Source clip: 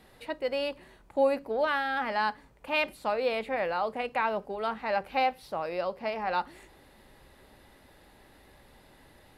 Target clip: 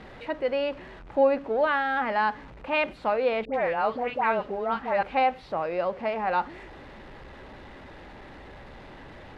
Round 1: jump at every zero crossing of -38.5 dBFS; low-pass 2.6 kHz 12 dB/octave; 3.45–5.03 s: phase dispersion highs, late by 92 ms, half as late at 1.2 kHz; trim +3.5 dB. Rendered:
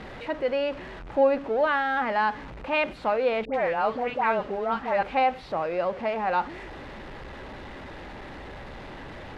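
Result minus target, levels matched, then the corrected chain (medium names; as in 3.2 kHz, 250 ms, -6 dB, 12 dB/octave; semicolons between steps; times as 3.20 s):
jump at every zero crossing: distortion +6 dB
jump at every zero crossing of -45 dBFS; low-pass 2.6 kHz 12 dB/octave; 3.45–5.03 s: phase dispersion highs, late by 92 ms, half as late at 1.2 kHz; trim +3.5 dB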